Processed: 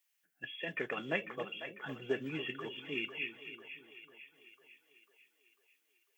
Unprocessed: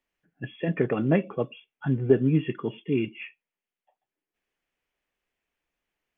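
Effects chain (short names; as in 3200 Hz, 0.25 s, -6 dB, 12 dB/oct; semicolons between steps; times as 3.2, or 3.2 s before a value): differentiator; split-band echo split 440 Hz, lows 0.287 s, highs 0.497 s, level -10 dB; gain +10 dB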